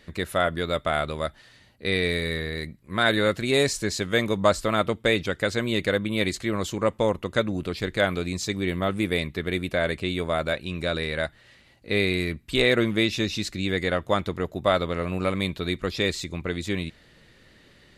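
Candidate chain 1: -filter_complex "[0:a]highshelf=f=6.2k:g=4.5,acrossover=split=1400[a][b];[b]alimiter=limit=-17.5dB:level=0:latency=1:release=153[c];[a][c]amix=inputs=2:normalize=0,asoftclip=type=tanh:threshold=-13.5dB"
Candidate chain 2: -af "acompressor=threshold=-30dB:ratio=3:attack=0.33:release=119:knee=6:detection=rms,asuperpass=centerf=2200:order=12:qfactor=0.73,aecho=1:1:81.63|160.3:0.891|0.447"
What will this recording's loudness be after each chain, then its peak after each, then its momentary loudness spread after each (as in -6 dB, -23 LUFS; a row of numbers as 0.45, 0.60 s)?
-27.0, -38.0 LUFS; -13.5, -20.0 dBFS; 6, 8 LU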